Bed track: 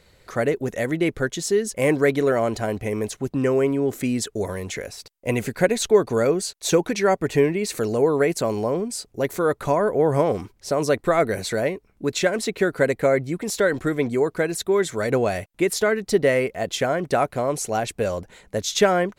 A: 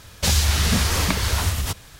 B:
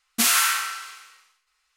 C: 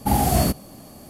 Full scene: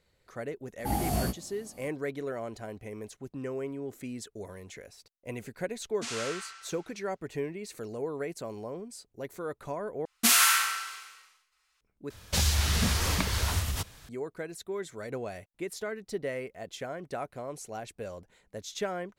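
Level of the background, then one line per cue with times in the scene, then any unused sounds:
bed track −15.5 dB
0:00.79: mix in C −7.5 dB + chorus effect 1.9 Hz, delay 16.5 ms, depth 3.9 ms
0:05.83: mix in B −16 dB + low-pass filter 7,600 Hz 24 dB per octave
0:10.05: overwrite with B −2 dB
0:12.10: overwrite with A −7 dB

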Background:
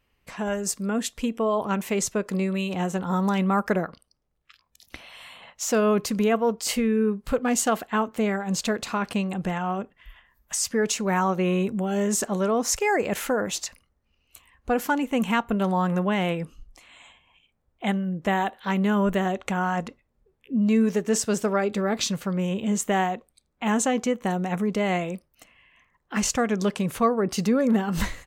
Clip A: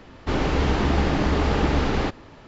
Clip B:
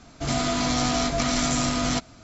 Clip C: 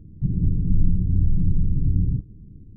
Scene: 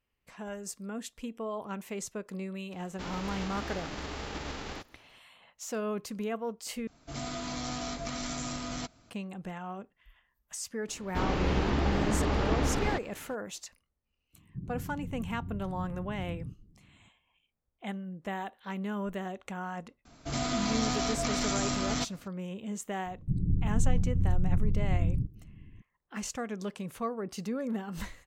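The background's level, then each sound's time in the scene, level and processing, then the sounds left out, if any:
background −12.5 dB
0:02.72: mix in A −18 dB + spectral envelope flattened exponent 0.6
0:06.87: overwrite with B −12.5 dB
0:10.88: mix in A −7 dB
0:14.33: mix in C −12.5 dB + high-pass filter 170 Hz 6 dB per octave
0:20.05: mix in B −7 dB
0:23.06: mix in C −7 dB

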